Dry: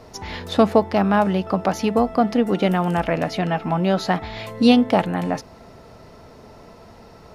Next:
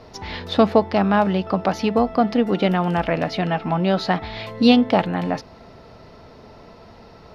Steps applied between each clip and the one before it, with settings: resonant high shelf 6 kHz -9 dB, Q 1.5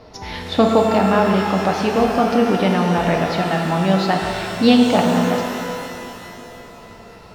pitch-shifted reverb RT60 2.8 s, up +12 st, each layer -8 dB, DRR 1.5 dB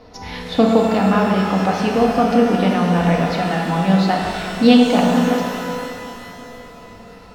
simulated room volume 2700 m³, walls furnished, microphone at 1.9 m; trim -2 dB

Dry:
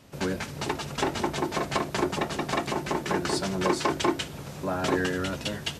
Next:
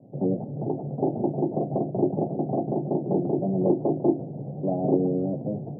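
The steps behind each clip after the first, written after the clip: Chebyshev band-pass 110–770 Hz, order 5; bass shelf 420 Hz +5.5 dB; trim +2 dB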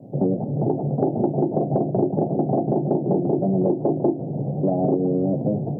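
compression, threshold -26 dBFS, peak gain reduction 10.5 dB; trim +9 dB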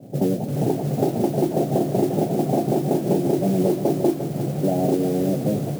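modulation noise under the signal 22 dB; bit-crushed delay 352 ms, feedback 35%, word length 6-bit, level -9.5 dB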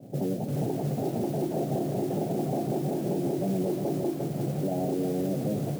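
peak limiter -16 dBFS, peak gain reduction 10 dB; trim -4.5 dB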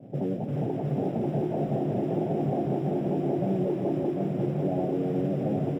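Savitzky-Golay filter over 25 samples; delay 746 ms -4.5 dB

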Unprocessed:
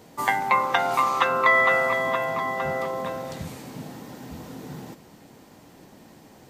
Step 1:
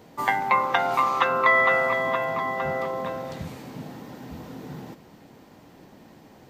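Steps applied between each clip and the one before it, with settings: peaking EQ 9.5 kHz -8.5 dB 1.4 oct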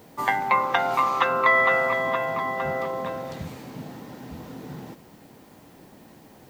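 added noise blue -62 dBFS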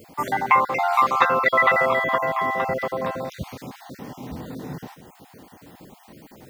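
random holes in the spectrogram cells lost 29%; trim +4.5 dB

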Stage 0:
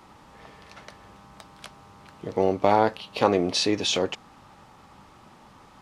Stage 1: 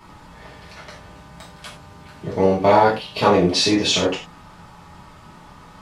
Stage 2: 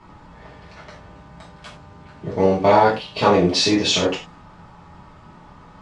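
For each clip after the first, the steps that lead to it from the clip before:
bass shelf 110 Hz +9 dB; reverberation, pre-delay 3 ms, DRR -7 dB; trim -1 dB
low-pass 8.4 kHz 24 dB/octave; tape noise reduction on one side only decoder only

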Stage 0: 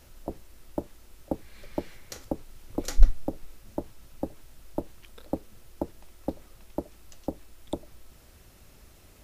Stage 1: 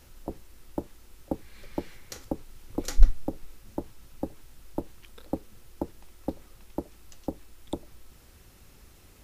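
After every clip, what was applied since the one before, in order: peaking EQ 630 Hz -7 dB 0.21 oct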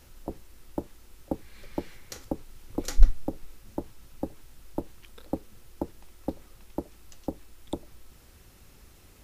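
no audible change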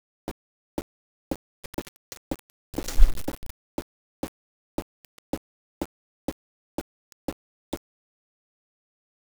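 word length cut 6-bit, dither none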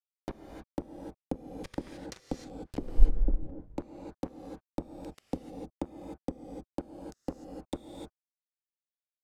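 low-pass that closes with the level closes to 430 Hz, closed at -27.5 dBFS; gated-style reverb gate 330 ms rising, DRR 3 dB; trim -3.5 dB

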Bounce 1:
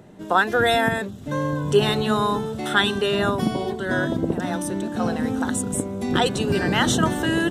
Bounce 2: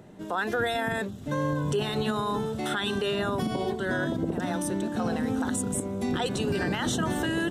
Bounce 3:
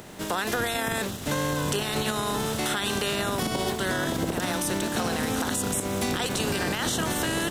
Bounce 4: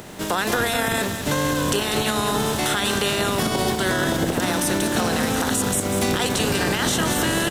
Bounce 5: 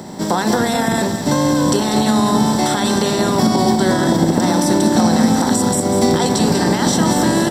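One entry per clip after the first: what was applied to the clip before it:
peak limiter -16.5 dBFS, peak gain reduction 11 dB; trim -2.5 dB
spectral contrast reduction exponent 0.56; compression, threshold -29 dBFS, peak gain reduction 7 dB; trim +5.5 dB
delay 194 ms -8.5 dB; trim +5 dB
reverberation RT60 0.45 s, pre-delay 3 ms, DRR 8.5 dB; trim -2.5 dB

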